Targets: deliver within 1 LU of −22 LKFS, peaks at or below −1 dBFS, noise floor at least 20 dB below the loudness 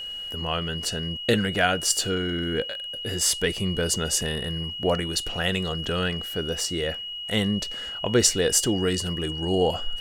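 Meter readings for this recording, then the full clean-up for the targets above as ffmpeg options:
interfering tone 2,900 Hz; level of the tone −32 dBFS; integrated loudness −25.0 LKFS; sample peak −4.5 dBFS; target loudness −22.0 LKFS
→ -af "bandreject=frequency=2900:width=30"
-af "volume=3dB"

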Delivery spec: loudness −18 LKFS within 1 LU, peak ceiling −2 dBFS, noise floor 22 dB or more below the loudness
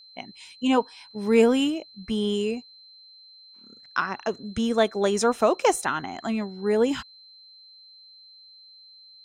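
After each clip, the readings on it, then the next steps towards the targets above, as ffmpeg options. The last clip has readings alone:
interfering tone 4,100 Hz; level of the tone −48 dBFS; integrated loudness −25.0 LKFS; sample peak −7.5 dBFS; target loudness −18.0 LKFS
→ -af "bandreject=frequency=4100:width=30"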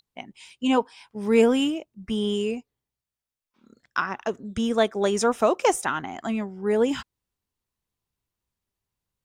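interfering tone none found; integrated loudness −25.0 LKFS; sample peak −7.5 dBFS; target loudness −18.0 LKFS
→ -af "volume=7dB,alimiter=limit=-2dB:level=0:latency=1"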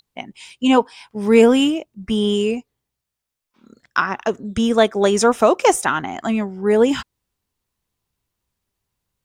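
integrated loudness −18.0 LKFS; sample peak −2.0 dBFS; background noise floor −83 dBFS

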